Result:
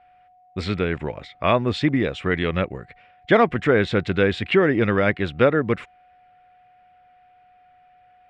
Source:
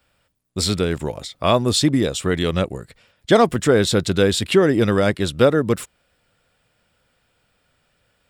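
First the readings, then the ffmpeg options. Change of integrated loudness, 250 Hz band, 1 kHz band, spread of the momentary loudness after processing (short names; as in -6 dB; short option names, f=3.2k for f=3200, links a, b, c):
-2.5 dB, -3.0 dB, -1.0 dB, 11 LU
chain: -af "aeval=exprs='val(0)+0.00316*sin(2*PI*730*n/s)':c=same,lowpass=f=2.2k:t=q:w=2.4,volume=-3dB"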